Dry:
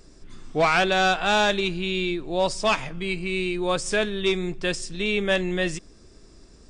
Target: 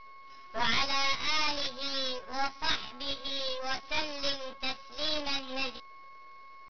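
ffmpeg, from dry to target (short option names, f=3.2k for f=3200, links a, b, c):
-filter_complex "[0:a]aemphasis=mode=production:type=riaa,asplit=2[a][b];[b]aeval=exprs='0.126*(abs(mod(val(0)/0.126+3,4)-2)-1)':c=same,volume=-10dB[c];[a][c]amix=inputs=2:normalize=0,flanger=delay=19.5:depth=5.8:speed=0.58,aeval=exprs='val(0)+0.00891*sin(2*PI*750*n/s)':c=same,aresample=8000,aeval=exprs='max(val(0),0)':c=same,aresample=44100,asetrate=64194,aresample=44100,atempo=0.686977,volume=-2.5dB"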